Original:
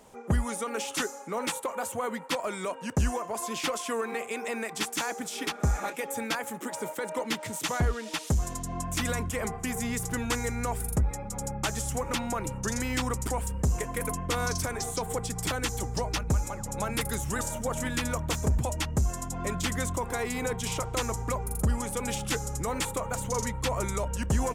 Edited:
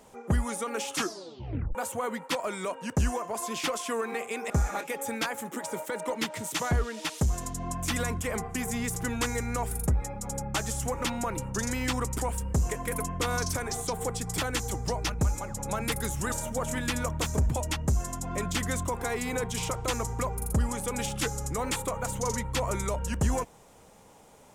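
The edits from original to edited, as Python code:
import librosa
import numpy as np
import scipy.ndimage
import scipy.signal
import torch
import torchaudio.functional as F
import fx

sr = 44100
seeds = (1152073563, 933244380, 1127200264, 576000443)

y = fx.edit(x, sr, fx.tape_stop(start_s=0.95, length_s=0.8),
    fx.cut(start_s=4.5, length_s=1.09), tone=tone)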